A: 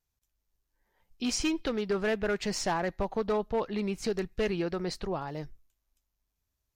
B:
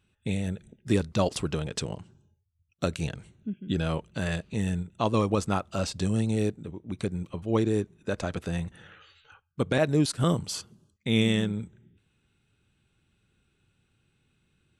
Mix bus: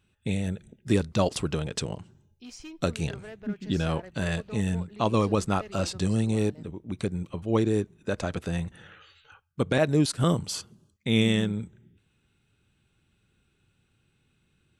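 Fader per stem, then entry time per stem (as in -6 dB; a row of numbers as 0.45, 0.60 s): -14.5, +1.0 dB; 1.20, 0.00 s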